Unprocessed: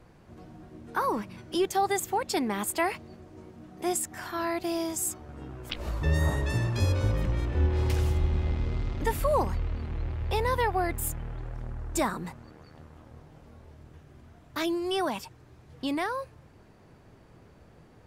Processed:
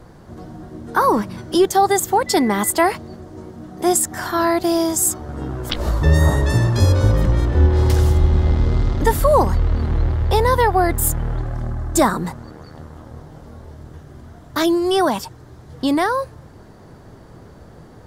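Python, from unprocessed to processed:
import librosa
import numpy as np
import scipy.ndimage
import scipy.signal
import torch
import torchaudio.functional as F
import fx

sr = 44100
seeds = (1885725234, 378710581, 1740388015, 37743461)

p1 = fx.peak_eq(x, sr, hz=2500.0, db=-10.0, octaves=0.51)
p2 = fx.dmg_tone(p1, sr, hz=2000.0, level_db=-44.0, at=(2.26, 2.69), fade=0.02)
p3 = fx.notch_comb(p2, sr, f0_hz=470.0, at=(11.42, 12.02))
p4 = fx.rider(p3, sr, range_db=5, speed_s=0.5)
p5 = p3 + (p4 * librosa.db_to_amplitude(-1.5))
y = p5 * librosa.db_to_amplitude(7.0)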